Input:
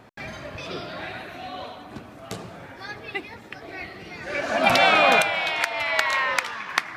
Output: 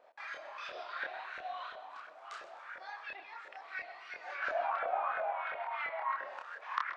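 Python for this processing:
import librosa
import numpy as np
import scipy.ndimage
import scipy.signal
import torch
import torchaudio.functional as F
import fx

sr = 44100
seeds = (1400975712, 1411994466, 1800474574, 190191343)

p1 = fx.median_filter(x, sr, points=41, at=(6.13, 6.61), fade=0.02)
p2 = fx.weighting(p1, sr, curve='ITU-R 468')
p3 = fx.env_lowpass_down(p2, sr, base_hz=890.0, full_db=-14.0)
p4 = fx.low_shelf(p3, sr, hz=190.0, db=-11.5)
p5 = fx.over_compress(p4, sr, threshold_db=-30.0, ratio=-1.0)
p6 = p4 + F.gain(torch.from_numpy(p5), 0.5).numpy()
p7 = fx.filter_lfo_bandpass(p6, sr, shape='saw_up', hz=2.9, low_hz=530.0, high_hz=1600.0, q=4.8)
p8 = fx.wow_flutter(p7, sr, seeds[0], rate_hz=2.1, depth_cents=22.0)
p9 = fx.chorus_voices(p8, sr, voices=2, hz=0.72, base_ms=27, depth_ms=3.4, mix_pct=45)
p10 = fx.echo_feedback(p9, sr, ms=129, feedback_pct=45, wet_db=-15.0)
y = F.gain(torch.from_numpy(p10), -2.5).numpy()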